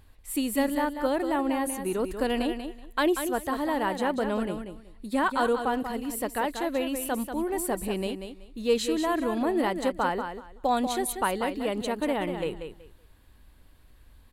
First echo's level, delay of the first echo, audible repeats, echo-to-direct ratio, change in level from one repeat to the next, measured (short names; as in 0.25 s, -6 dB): -8.0 dB, 0.188 s, 2, -8.0 dB, -14.0 dB